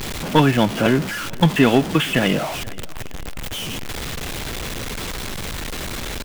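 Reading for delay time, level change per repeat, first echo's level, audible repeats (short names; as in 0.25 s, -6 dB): 0.473 s, -8.0 dB, -23.0 dB, 2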